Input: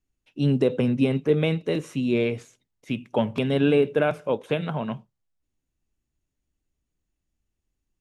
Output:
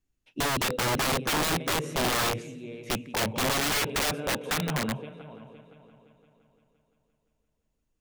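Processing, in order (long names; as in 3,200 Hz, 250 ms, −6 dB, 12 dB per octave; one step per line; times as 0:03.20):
echo machine with several playback heads 172 ms, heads first and third, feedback 49%, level −19 dB
wrap-around overflow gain 21.5 dB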